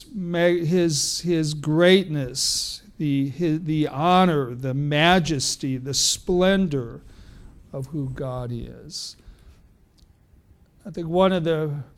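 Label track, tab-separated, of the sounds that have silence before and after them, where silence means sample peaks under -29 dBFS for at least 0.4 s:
7.740000	9.090000	sound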